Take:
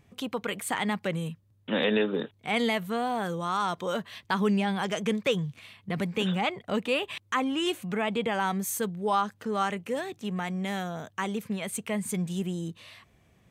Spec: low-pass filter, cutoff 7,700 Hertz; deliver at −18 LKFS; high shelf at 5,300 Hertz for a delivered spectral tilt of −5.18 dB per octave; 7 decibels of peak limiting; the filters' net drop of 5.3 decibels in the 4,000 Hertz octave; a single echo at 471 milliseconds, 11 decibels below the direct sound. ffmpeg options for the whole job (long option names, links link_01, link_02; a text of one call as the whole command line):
ffmpeg -i in.wav -af "lowpass=7700,equalizer=frequency=4000:width_type=o:gain=-4.5,highshelf=frequency=5300:gain=-8,alimiter=limit=-22.5dB:level=0:latency=1,aecho=1:1:471:0.282,volume=14.5dB" out.wav